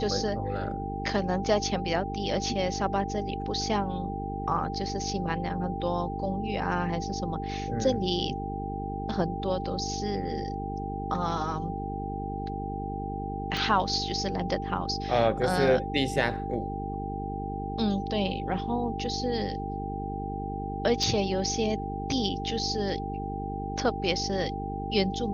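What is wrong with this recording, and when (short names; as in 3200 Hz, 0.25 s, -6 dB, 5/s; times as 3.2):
buzz 50 Hz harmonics 9 -35 dBFS
tone 790 Hz -35 dBFS
13.57 pop -18 dBFS
21.03 gap 2.2 ms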